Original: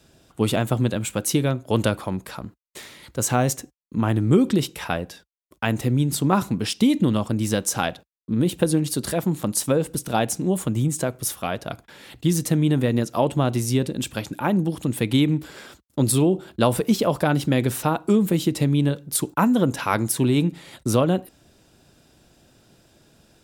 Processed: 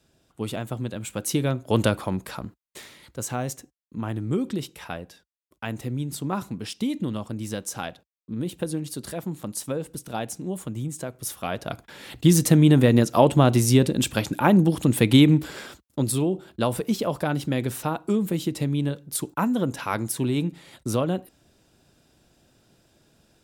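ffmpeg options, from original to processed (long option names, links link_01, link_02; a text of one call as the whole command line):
ffmpeg -i in.wav -af "volume=12.5dB,afade=type=in:start_time=0.9:duration=0.88:silence=0.354813,afade=type=out:start_time=2.39:duration=0.88:silence=0.375837,afade=type=in:start_time=11.12:duration=1.18:silence=0.237137,afade=type=out:start_time=15.52:duration=0.54:silence=0.354813" out.wav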